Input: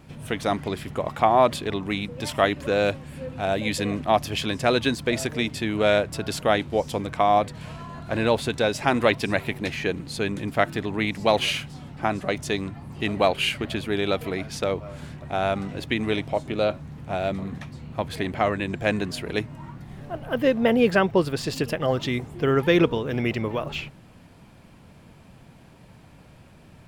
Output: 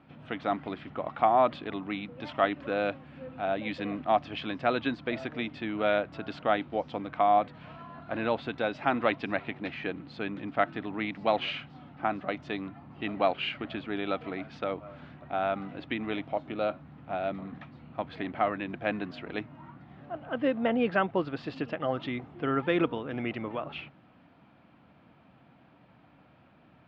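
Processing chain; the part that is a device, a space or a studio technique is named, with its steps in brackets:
guitar cabinet (loudspeaker in its box 100–3,500 Hz, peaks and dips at 100 Hz −6 dB, 160 Hz −3 dB, 290 Hz +5 dB, 410 Hz −4 dB, 730 Hz +5 dB, 1,300 Hz +6 dB)
level −8 dB

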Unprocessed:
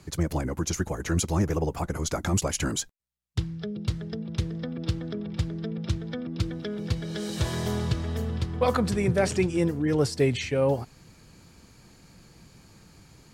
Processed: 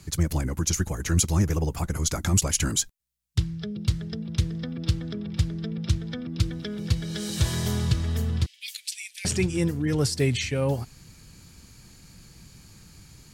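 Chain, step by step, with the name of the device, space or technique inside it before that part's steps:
0:08.46–0:09.25: Butterworth high-pass 2,300 Hz 48 dB per octave
smiley-face EQ (low-shelf EQ 120 Hz +4 dB; parametric band 580 Hz −7 dB 2.4 octaves; high-shelf EQ 5,300 Hz +6 dB)
level +2.5 dB

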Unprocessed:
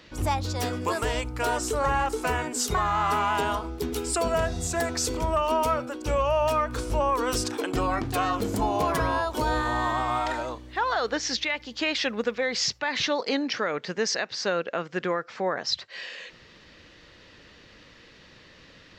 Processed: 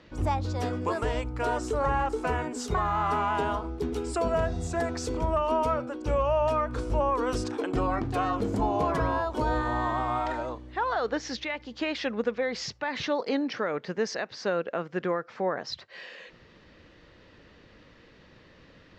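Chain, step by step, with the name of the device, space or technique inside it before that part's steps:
through cloth (low-pass filter 8,700 Hz 12 dB per octave; high-shelf EQ 2,000 Hz −11 dB)

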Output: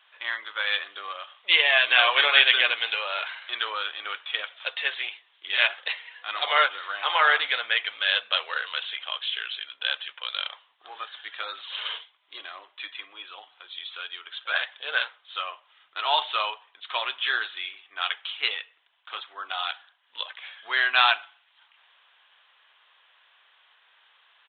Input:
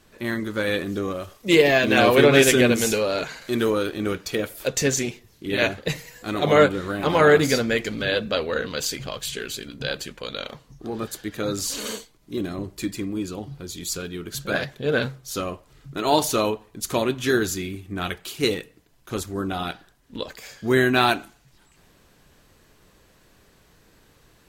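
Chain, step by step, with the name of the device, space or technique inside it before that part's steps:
musical greeting card (downsampling to 8,000 Hz; high-pass filter 870 Hz 24 dB per octave; parametric band 3,200 Hz +7 dB 0.47 octaves)
level +1 dB

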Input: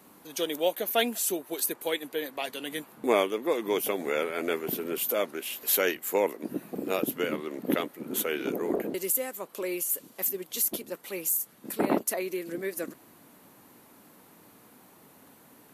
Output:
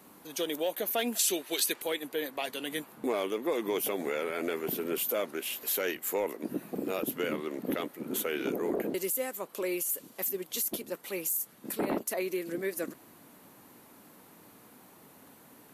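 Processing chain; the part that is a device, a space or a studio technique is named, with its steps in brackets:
soft clipper into limiter (soft clipping −14.5 dBFS, distortion −22 dB; brickwall limiter −22 dBFS, peak gain reduction 6.5 dB)
0:01.19–0:01.82: meter weighting curve D

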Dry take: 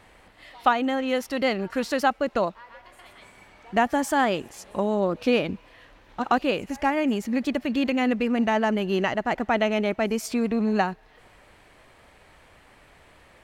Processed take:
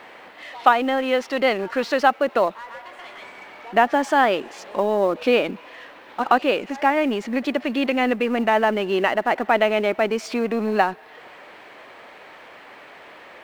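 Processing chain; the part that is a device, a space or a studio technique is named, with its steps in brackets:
phone line with mismatched companding (band-pass filter 330–3,600 Hz; mu-law and A-law mismatch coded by mu)
level +5 dB

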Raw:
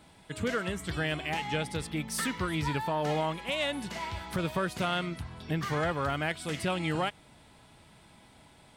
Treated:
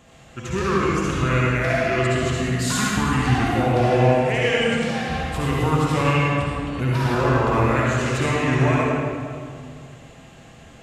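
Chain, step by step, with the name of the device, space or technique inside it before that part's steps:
slowed and reverbed (speed change −19%; convolution reverb RT60 2.2 s, pre-delay 53 ms, DRR −5 dB)
level +4.5 dB

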